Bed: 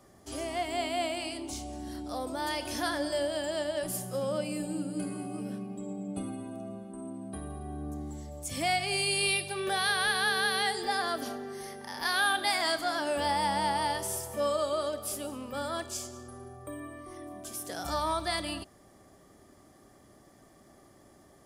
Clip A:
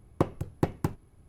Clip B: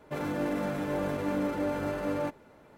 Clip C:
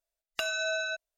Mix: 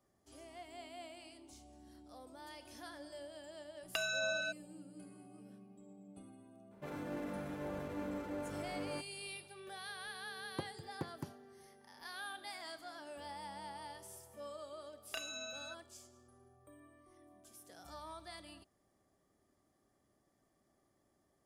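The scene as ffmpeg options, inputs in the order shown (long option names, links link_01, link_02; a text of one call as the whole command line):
ffmpeg -i bed.wav -i cue0.wav -i cue1.wav -i cue2.wav -filter_complex "[3:a]asplit=2[link_01][link_02];[0:a]volume=-19dB[link_03];[1:a]highpass=frequency=99:width=0.5412,highpass=frequency=99:width=1.3066[link_04];[link_02]asplit=2[link_05][link_06];[link_06]adelay=32,volume=-2.5dB[link_07];[link_05][link_07]amix=inputs=2:normalize=0[link_08];[link_01]atrim=end=1.17,asetpts=PTS-STARTPTS,volume=-5.5dB,afade=type=in:duration=0.004:curve=hsin,afade=type=out:start_time=1.166:duration=0.004:curve=hsin,adelay=3560[link_09];[2:a]atrim=end=2.77,asetpts=PTS-STARTPTS,volume=-11.5dB,afade=type=in:duration=0.004:curve=hsin,afade=type=out:start_time=2.766:duration=0.004:curve=hsin,adelay=6710[link_10];[link_04]atrim=end=1.28,asetpts=PTS-STARTPTS,volume=-16dB,afade=type=in:duration=0.004:curve=hsin,afade=type=out:start_time=1.276:duration=0.004:curve=hsin,adelay=10380[link_11];[link_08]atrim=end=1.17,asetpts=PTS-STARTPTS,volume=-11dB,afade=type=in:duration=0.004:curve=hsin,afade=type=out:start_time=1.166:duration=0.004:curve=hsin,adelay=14750[link_12];[link_03][link_09][link_10][link_11][link_12]amix=inputs=5:normalize=0" out.wav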